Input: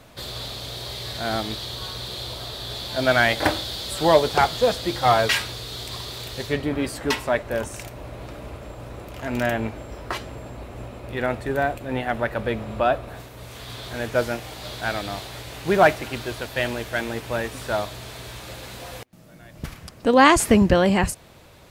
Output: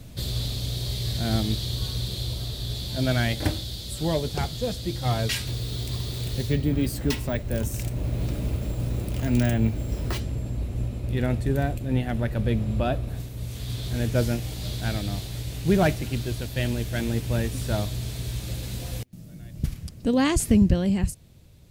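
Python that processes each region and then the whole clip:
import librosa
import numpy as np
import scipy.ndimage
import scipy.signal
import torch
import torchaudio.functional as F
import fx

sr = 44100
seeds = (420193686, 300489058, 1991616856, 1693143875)

y = fx.chain(x, sr, fx.resample_bad(factor=2, down='none', up='hold'),
    fx.band_squash(depth_pct=40), at=(5.47, 10.2))
y = fx.peak_eq(y, sr, hz=1100.0, db=-14.0, octaves=2.5)
y = fx.rider(y, sr, range_db=5, speed_s=2.0)
y = fx.bass_treble(y, sr, bass_db=8, treble_db=0)
y = y * 10.0 ** (-1.0 / 20.0)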